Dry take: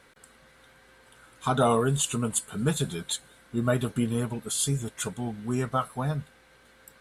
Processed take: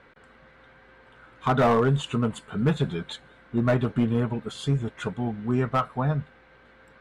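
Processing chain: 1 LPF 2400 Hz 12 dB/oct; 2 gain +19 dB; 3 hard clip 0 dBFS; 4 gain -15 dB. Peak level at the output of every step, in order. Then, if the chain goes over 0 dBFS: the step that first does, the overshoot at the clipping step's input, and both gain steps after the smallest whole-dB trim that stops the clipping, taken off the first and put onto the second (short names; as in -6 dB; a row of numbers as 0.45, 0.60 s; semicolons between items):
-9.5, +9.5, 0.0, -15.0 dBFS; step 2, 9.5 dB; step 2 +9 dB, step 4 -5 dB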